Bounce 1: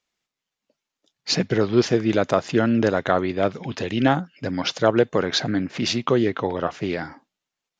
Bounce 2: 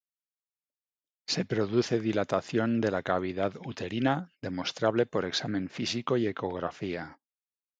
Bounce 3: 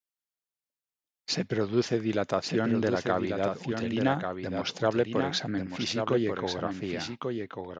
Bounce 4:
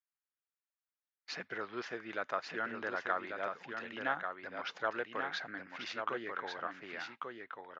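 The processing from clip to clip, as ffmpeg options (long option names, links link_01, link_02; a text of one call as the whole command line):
ffmpeg -i in.wav -af "agate=range=-27dB:threshold=-38dB:ratio=16:detection=peak,volume=-8dB" out.wav
ffmpeg -i in.wav -af "aecho=1:1:1141:0.531" out.wav
ffmpeg -i in.wav -af "bandpass=frequency=1500:width_type=q:width=1.7:csg=0" out.wav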